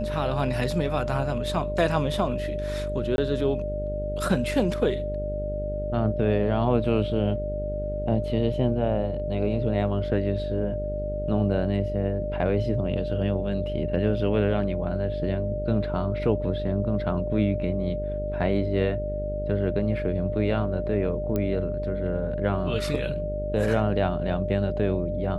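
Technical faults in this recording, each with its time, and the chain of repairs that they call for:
mains buzz 50 Hz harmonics 12 −32 dBFS
whistle 600 Hz −30 dBFS
0:03.16–0:03.18: drop-out 21 ms
0:21.36: click −15 dBFS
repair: click removal
hum removal 50 Hz, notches 12
notch filter 600 Hz, Q 30
repair the gap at 0:03.16, 21 ms

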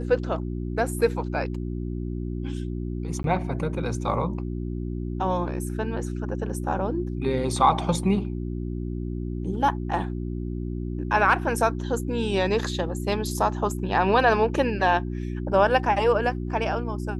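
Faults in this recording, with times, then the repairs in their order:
mains hum 60 Hz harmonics 6 −30 dBFS
0:03.23–0:03.24: drop-out 12 ms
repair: hum removal 60 Hz, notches 6
repair the gap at 0:03.23, 12 ms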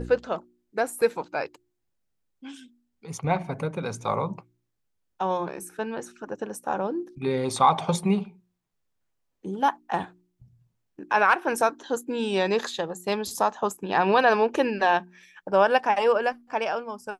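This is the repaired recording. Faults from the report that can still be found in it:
none of them is left

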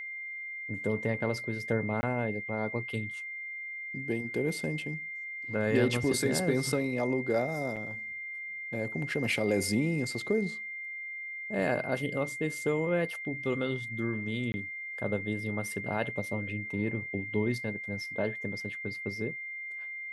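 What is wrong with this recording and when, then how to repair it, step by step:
whistle 2,100 Hz −37 dBFS
0:02.01–0:02.03: drop-out 20 ms
0:07.76–0:07.77: drop-out 6.9 ms
0:14.52–0:14.54: drop-out 20 ms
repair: notch filter 2,100 Hz, Q 30
repair the gap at 0:02.01, 20 ms
repair the gap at 0:07.76, 6.9 ms
repair the gap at 0:14.52, 20 ms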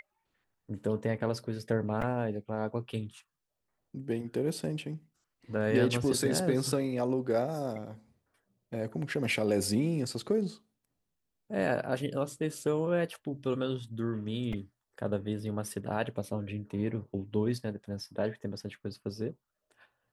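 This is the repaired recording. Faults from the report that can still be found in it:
none of them is left

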